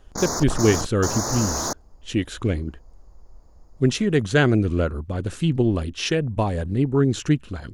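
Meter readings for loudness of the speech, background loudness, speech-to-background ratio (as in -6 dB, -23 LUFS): -22.5 LUFS, -26.5 LUFS, 4.0 dB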